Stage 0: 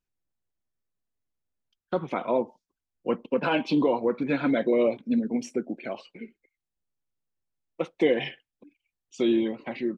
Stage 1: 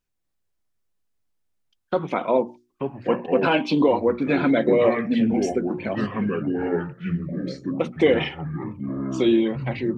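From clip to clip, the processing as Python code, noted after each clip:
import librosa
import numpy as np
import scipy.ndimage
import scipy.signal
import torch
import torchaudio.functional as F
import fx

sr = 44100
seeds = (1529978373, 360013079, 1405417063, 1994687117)

y = fx.echo_pitch(x, sr, ms=238, semitones=-5, count=3, db_per_echo=-6.0)
y = fx.hum_notches(y, sr, base_hz=60, count=6)
y = y * librosa.db_to_amplitude(5.0)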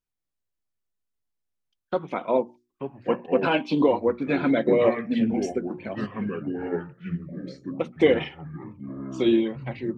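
y = fx.upward_expand(x, sr, threshold_db=-30.0, expansion=1.5)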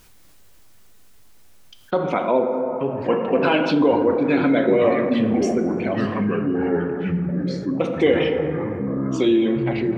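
y = fx.rev_plate(x, sr, seeds[0], rt60_s=2.3, hf_ratio=0.35, predelay_ms=0, drr_db=7.0)
y = fx.env_flatten(y, sr, amount_pct=50)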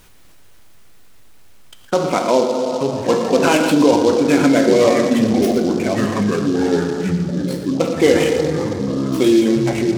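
y = x + 10.0 ** (-12.0 / 20.0) * np.pad(x, (int(116 * sr / 1000.0), 0))[:len(x)]
y = fx.noise_mod_delay(y, sr, seeds[1], noise_hz=4300.0, depth_ms=0.034)
y = y * librosa.db_to_amplitude(4.0)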